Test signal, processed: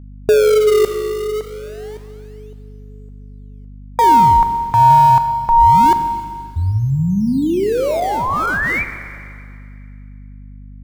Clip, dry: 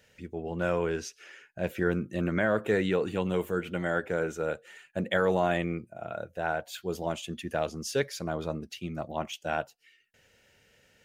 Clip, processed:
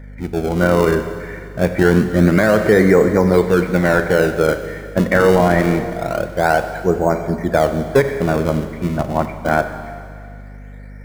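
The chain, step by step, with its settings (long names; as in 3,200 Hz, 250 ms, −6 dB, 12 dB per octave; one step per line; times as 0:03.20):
linear-phase brick-wall low-pass 2,400 Hz
in parallel at −9 dB: sample-and-hold swept by an LFO 31×, swing 160% 0.25 Hz
on the sum: four-comb reverb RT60 2.2 s, combs from 30 ms, DRR 9 dB
mains hum 50 Hz, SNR 20 dB
boost into a limiter +15 dB
level −1 dB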